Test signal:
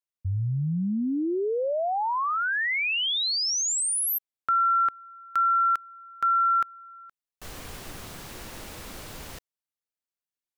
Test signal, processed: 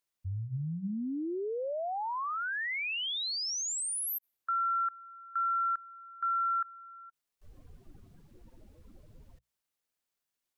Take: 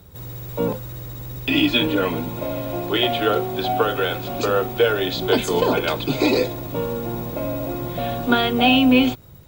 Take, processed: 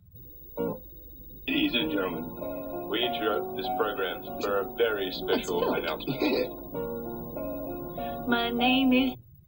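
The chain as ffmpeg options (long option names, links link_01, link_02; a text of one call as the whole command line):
ffmpeg -i in.wav -af "acompressor=mode=upward:threshold=-37dB:ratio=4:attack=0.28:release=30:knee=2.83:detection=peak,bandreject=frequency=60:width_type=h:width=6,bandreject=frequency=120:width_type=h:width=6,bandreject=frequency=180:width_type=h:width=6,afftdn=noise_reduction=24:noise_floor=-34,volume=-8dB" out.wav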